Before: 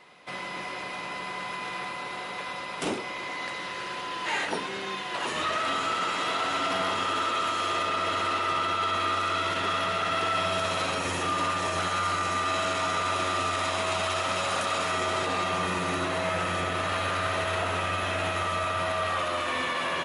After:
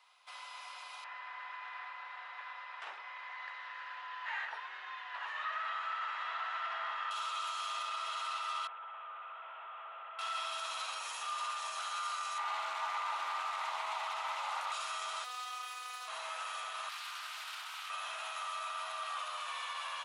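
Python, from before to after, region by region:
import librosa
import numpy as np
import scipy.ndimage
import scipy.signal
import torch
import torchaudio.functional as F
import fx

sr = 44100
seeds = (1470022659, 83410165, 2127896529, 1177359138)

y = fx.chain(x, sr, fx.lowpass(hz=2300.0, slope=12),
    fx.peak_eq(hz=1800.0, db=13.0, octaves=0.33), at=(1.04, 7.11))
y = fx.chain(y, sr, fx.delta_mod(bps=16000, step_db=-40.5),
    fx.highpass(hz=360.0, slope=24), at=(8.67, 10.19))
y = fx.chain(y, sr, fx.high_shelf(hz=4100.0, db=-11.0),
    fx.small_body(hz=(270.0, 850.0, 2000.0), ring_ms=20, db=12),
    fx.doppler_dist(depth_ms=0.19), at=(12.38, 14.72))
y = fx.chain(y, sr, fx.lower_of_two(delay_ms=1.6),
    fx.low_shelf(hz=210.0, db=-11.0),
    fx.robotise(hz=249.0), at=(15.24, 16.08))
y = fx.chain(y, sr, fx.highpass(hz=1500.0, slope=12),
    fx.doppler_dist(depth_ms=0.24), at=(16.89, 17.9))
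y = scipy.signal.sosfilt(scipy.signal.butter(4, 920.0, 'highpass', fs=sr, output='sos'), y)
y = fx.peak_eq(y, sr, hz=1900.0, db=-8.5, octaves=0.69)
y = y * librosa.db_to_amplitude(-7.5)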